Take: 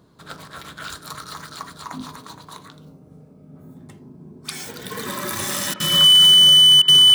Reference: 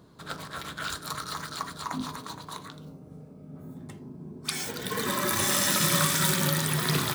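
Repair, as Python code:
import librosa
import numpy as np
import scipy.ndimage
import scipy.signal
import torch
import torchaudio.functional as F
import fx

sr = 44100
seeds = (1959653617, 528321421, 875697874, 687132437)

y = fx.fix_declip(x, sr, threshold_db=-8.5)
y = fx.notch(y, sr, hz=3000.0, q=30.0)
y = fx.fix_interpolate(y, sr, at_s=(5.74, 6.82), length_ms=59.0)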